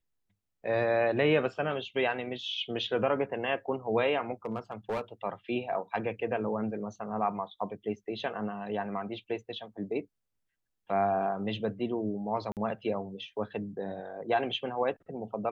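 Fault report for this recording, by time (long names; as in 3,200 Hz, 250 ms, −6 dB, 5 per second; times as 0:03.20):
0:04.45–0:05.01: clipping −27.5 dBFS
0:12.52–0:12.57: drop-out 48 ms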